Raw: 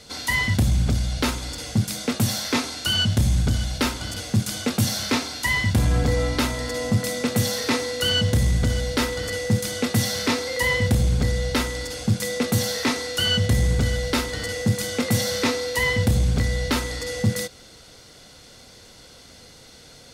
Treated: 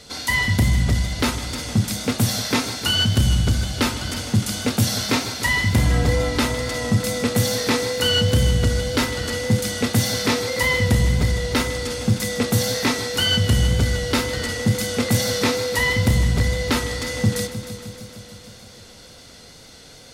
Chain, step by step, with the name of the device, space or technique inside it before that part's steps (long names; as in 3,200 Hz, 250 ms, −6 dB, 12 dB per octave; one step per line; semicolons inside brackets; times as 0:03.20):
multi-head tape echo (echo machine with several playback heads 154 ms, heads first and second, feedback 65%, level −15 dB; tape wow and flutter 24 cents)
level +2 dB